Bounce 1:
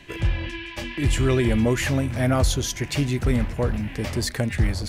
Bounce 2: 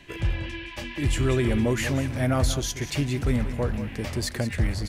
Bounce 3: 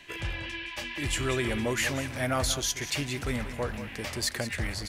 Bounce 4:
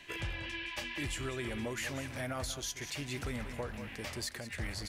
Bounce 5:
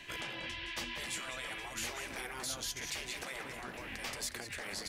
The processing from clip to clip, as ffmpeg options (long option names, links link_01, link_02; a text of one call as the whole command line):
ffmpeg -i in.wav -af "aecho=1:1:186:0.251,volume=-3dB" out.wav
ffmpeg -i in.wav -af "lowshelf=frequency=490:gain=-12,volume=2dB" out.wav
ffmpeg -i in.wav -af "alimiter=level_in=1dB:limit=-24dB:level=0:latency=1:release=442,volume=-1dB,volume=-2.5dB" out.wav
ffmpeg -i in.wav -af "afftfilt=real='re*lt(hypot(re,im),0.0316)':imag='im*lt(hypot(re,im),0.0316)':win_size=1024:overlap=0.75,volume=3dB" out.wav